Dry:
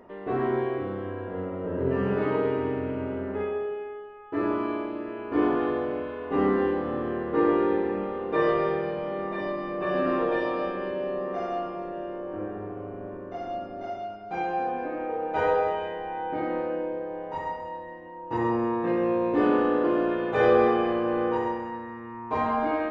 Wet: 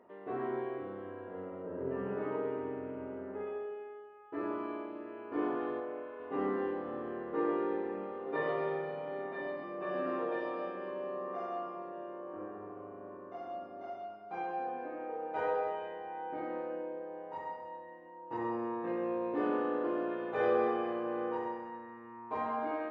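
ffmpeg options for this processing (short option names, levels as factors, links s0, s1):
-filter_complex "[0:a]asettb=1/sr,asplit=3[s0][s1][s2];[s0]atrim=end=1.624[s3];[s1]atrim=start=1.62:end=3.47,asetpts=PTS-STARTPTS,afade=t=in:d=0.004:c=qsin,afade=t=out:st=1.846:d=0.004:c=qsin,aemphasis=mode=reproduction:type=75kf[s4];[s2]atrim=start=3.466[s5];[s3][s4]acrossfade=d=0.004:c1=hsin:c2=qsin[s6];[s6][s5]acrossfade=d=0.004:c1=qsin:c2=hsin,asettb=1/sr,asplit=3[s7][s8][s9];[s7]atrim=end=5.804[s10];[s8]atrim=start=5.8:end=6.2,asetpts=PTS-STARTPTS,afade=t=in:d=0.004:c=qsin,afade=t=out:st=0.396:d=0.004:c=qsin,bass=f=250:g=-9,treble=f=4000:g=-13[s11];[s9]atrim=start=6.196[s12];[s10][s11]acrossfade=d=0.004:c1=hsin:c2=qsin[s13];[s13][s12]acrossfade=d=0.004:c1=qsin:c2=hsin,asettb=1/sr,asplit=3[s14][s15][s16];[s14]atrim=end=8.264[s17];[s15]atrim=start=8.26:end=9.64,asetpts=PTS-STARTPTS,afade=t=in:d=0.004:c=qsin,afade=t=out:st=1.376:d=0.004:c=qsin,aecho=1:1:7.3:0.9,atrim=end_sample=60858[s18];[s16]atrim=start=9.636[s19];[s17][s18]acrossfade=d=0.004:c1=hsin:c2=qsin[s20];[s20][s19]acrossfade=d=0.004:c1=qsin:c2=hsin,asettb=1/sr,asplit=3[s21][s22][s23];[s21]atrim=end=10.884[s24];[s22]atrim=start=10.88:end=14.51,asetpts=PTS-STARTPTS,afade=t=in:d=0.004:c=qsin,afade=t=out:st=3.626:d=0.004:c=qsin,equalizer=f=1100:t=o:w=0.23:g=9[s25];[s23]atrim=start=14.506[s26];[s24][s25]acrossfade=d=0.004:c1=hsin:c2=qsin[s27];[s27][s26]acrossfade=d=0.004:c1=qsin:c2=hsin,highpass=f=320:p=1,highshelf=f=2800:g=-9.5,volume=0.422"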